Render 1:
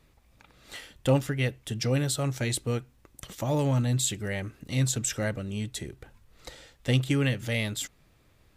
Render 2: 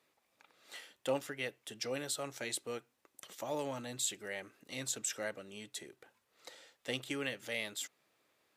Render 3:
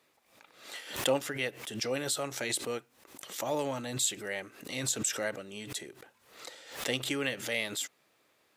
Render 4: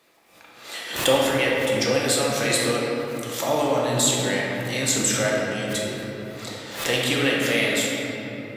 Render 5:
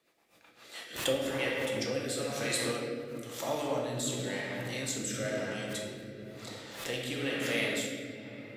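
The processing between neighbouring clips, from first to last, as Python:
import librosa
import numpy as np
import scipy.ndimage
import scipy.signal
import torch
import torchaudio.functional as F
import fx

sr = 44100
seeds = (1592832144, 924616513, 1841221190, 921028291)

y1 = scipy.signal.sosfilt(scipy.signal.butter(2, 390.0, 'highpass', fs=sr, output='sos'), x)
y1 = y1 * 10.0 ** (-7.0 / 20.0)
y2 = fx.pre_swell(y1, sr, db_per_s=96.0)
y2 = y2 * 10.0 ** (5.5 / 20.0)
y3 = fx.room_shoebox(y2, sr, seeds[0], volume_m3=210.0, walls='hard', distance_m=0.76)
y3 = y3 * 10.0 ** (7.0 / 20.0)
y4 = fx.rotary_switch(y3, sr, hz=8.0, then_hz=1.0, switch_at_s=0.38)
y4 = y4 * 10.0 ** (-9.0 / 20.0)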